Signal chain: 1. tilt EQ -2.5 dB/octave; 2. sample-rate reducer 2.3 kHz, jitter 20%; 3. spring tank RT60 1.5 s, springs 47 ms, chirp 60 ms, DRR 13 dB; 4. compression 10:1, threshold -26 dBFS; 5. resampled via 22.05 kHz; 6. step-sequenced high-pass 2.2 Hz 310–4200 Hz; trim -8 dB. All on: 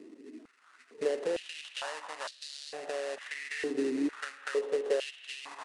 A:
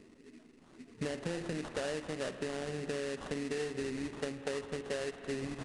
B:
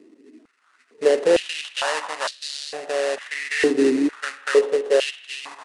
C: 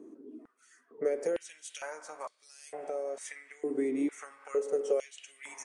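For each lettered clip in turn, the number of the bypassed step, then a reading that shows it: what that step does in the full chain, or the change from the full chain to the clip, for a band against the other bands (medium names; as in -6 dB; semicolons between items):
6, 8 kHz band +3.0 dB; 4, loudness change +13.0 LU; 2, distortion -1 dB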